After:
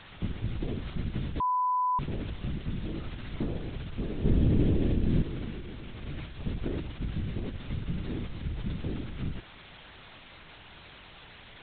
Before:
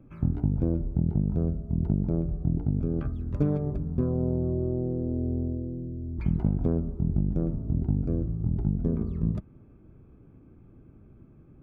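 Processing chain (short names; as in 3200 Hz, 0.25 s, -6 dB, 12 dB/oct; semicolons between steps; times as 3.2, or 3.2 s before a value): 4.24–5.22 tilt -4 dB/oct; 6.05–6.46 negative-ratio compressor -33 dBFS, ratio -1; requantised 6-bit, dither triangular; LPC vocoder at 8 kHz whisper; 1.4–1.99 bleep 1000 Hz -17 dBFS; gain -7 dB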